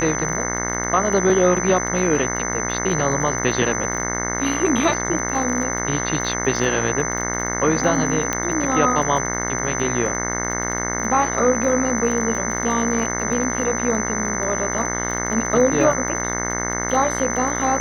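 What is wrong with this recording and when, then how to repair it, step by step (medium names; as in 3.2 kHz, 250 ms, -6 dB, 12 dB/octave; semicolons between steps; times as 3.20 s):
buzz 60 Hz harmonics 36 -26 dBFS
crackle 25 per s -27 dBFS
whine 6.1 kHz -26 dBFS
8.33 s: pop -6 dBFS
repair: de-click; band-stop 6.1 kHz, Q 30; de-hum 60 Hz, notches 36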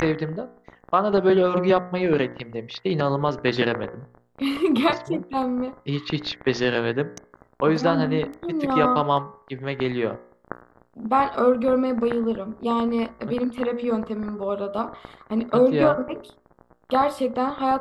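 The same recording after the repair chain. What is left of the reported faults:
8.33 s: pop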